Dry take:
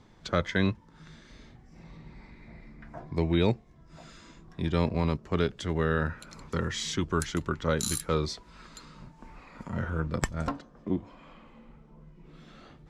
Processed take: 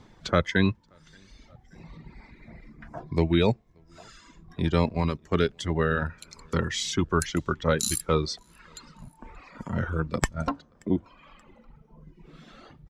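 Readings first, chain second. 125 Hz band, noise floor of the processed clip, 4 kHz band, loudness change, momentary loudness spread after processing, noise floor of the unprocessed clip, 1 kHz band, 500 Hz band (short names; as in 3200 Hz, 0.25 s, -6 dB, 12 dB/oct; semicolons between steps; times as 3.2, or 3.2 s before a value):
+2.5 dB, -59 dBFS, +3.5 dB, +3.0 dB, 15 LU, -56 dBFS, +3.5 dB, +3.5 dB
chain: feedback echo 0.579 s, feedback 36%, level -24 dB; reverb removal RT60 1.7 s; gain +4.5 dB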